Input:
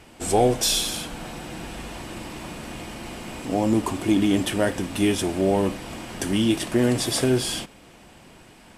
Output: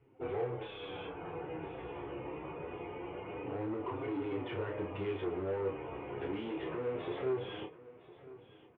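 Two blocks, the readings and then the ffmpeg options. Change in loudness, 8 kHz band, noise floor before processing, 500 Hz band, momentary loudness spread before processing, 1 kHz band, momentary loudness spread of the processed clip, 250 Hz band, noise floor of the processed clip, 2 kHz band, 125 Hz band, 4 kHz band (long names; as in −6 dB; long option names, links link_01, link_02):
−16.5 dB, below −40 dB, −50 dBFS, −11.0 dB, 15 LU, −13.5 dB, 9 LU, −17.5 dB, −59 dBFS, −14.5 dB, −15.5 dB, −24.0 dB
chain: -filter_complex "[0:a]bandreject=frequency=154:width_type=h:width=4,bandreject=frequency=308:width_type=h:width=4,bandreject=frequency=462:width_type=h:width=4,bandreject=frequency=616:width_type=h:width=4,bandreject=frequency=770:width_type=h:width=4,bandreject=frequency=924:width_type=h:width=4,bandreject=frequency=1078:width_type=h:width=4,bandreject=frequency=1232:width_type=h:width=4,bandreject=frequency=1386:width_type=h:width=4,bandreject=frequency=1540:width_type=h:width=4,bandreject=frequency=1694:width_type=h:width=4,bandreject=frequency=1848:width_type=h:width=4,bandreject=frequency=2002:width_type=h:width=4,bandreject=frequency=2156:width_type=h:width=4,bandreject=frequency=2310:width_type=h:width=4,bandreject=frequency=2464:width_type=h:width=4,bandreject=frequency=2618:width_type=h:width=4,bandreject=frequency=2772:width_type=h:width=4,bandreject=frequency=2926:width_type=h:width=4,bandreject=frequency=3080:width_type=h:width=4,bandreject=frequency=3234:width_type=h:width=4,bandreject=frequency=3388:width_type=h:width=4,bandreject=frequency=3542:width_type=h:width=4,bandreject=frequency=3696:width_type=h:width=4,bandreject=frequency=3850:width_type=h:width=4,bandreject=frequency=4004:width_type=h:width=4,bandreject=frequency=4158:width_type=h:width=4,bandreject=frequency=4312:width_type=h:width=4,bandreject=frequency=4466:width_type=h:width=4,bandreject=frequency=4620:width_type=h:width=4,afftdn=noise_reduction=19:noise_floor=-40,equalizer=frequency=210:width=2.8:gain=-14.5,acompressor=threshold=-24dB:ratio=10,aresample=8000,asoftclip=type=tanh:threshold=-29dB,aresample=44100,flanger=delay=7.1:depth=7.3:regen=9:speed=0.24:shape=triangular,volume=35dB,asoftclip=hard,volume=-35dB,highpass=110,equalizer=frequency=240:width_type=q:width=4:gain=-6,equalizer=frequency=450:width_type=q:width=4:gain=10,equalizer=frequency=640:width_type=q:width=4:gain=-6,equalizer=frequency=1700:width_type=q:width=4:gain=-7,lowpass=frequency=2300:width=0.5412,lowpass=frequency=2300:width=1.3066,asplit=2[link_01][link_02];[link_02]adelay=31,volume=-5dB[link_03];[link_01][link_03]amix=inputs=2:normalize=0,aecho=1:1:1008|2016|3024:0.126|0.039|0.0121"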